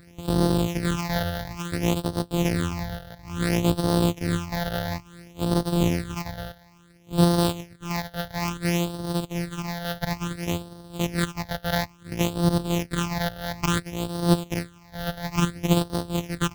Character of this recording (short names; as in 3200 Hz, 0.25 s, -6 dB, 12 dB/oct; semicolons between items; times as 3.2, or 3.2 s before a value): a buzz of ramps at a fixed pitch in blocks of 256 samples; phasing stages 8, 0.58 Hz, lowest notch 310–2300 Hz